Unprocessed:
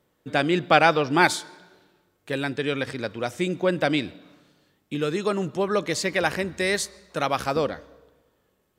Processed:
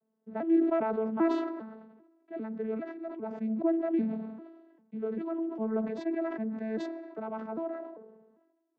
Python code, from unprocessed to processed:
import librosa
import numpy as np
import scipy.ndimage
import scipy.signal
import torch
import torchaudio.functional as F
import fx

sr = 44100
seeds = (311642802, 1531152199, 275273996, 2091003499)

y = fx.vocoder_arp(x, sr, chord='bare fifth', root=57, every_ms=398)
y = scipy.signal.sosfilt(scipy.signal.butter(2, 1200.0, 'lowpass', fs=sr, output='sos'), y)
y = fx.sustainer(y, sr, db_per_s=47.0)
y = y * 10.0 ** (-7.5 / 20.0)